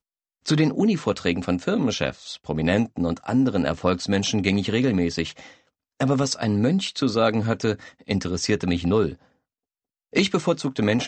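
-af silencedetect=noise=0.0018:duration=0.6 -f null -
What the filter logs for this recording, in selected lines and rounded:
silence_start: 9.32
silence_end: 10.13 | silence_duration: 0.81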